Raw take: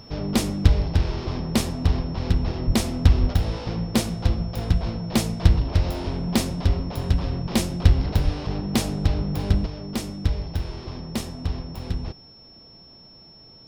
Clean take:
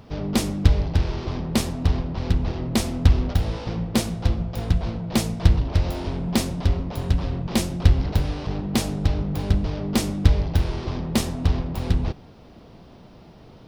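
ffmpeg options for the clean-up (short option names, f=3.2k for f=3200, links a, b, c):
-filter_complex "[0:a]bandreject=f=5.4k:w=30,asplit=3[a][b][c];[a]afade=t=out:st=2.66:d=0.02[d];[b]highpass=f=140:w=0.5412,highpass=f=140:w=1.3066,afade=t=in:st=2.66:d=0.02,afade=t=out:st=2.78:d=0.02[e];[c]afade=t=in:st=2.78:d=0.02[f];[d][e][f]amix=inputs=3:normalize=0,asplit=3[g][h][i];[g]afade=t=out:st=3.2:d=0.02[j];[h]highpass=f=140:w=0.5412,highpass=f=140:w=1.3066,afade=t=in:st=3.2:d=0.02,afade=t=out:st=3.32:d=0.02[k];[i]afade=t=in:st=3.32:d=0.02[l];[j][k][l]amix=inputs=3:normalize=0,asplit=3[m][n][o];[m]afade=t=out:st=8.24:d=0.02[p];[n]highpass=f=140:w=0.5412,highpass=f=140:w=1.3066,afade=t=in:st=8.24:d=0.02,afade=t=out:st=8.36:d=0.02[q];[o]afade=t=in:st=8.36:d=0.02[r];[p][q][r]amix=inputs=3:normalize=0,asetnsamples=n=441:p=0,asendcmd='9.66 volume volume 6.5dB',volume=0dB"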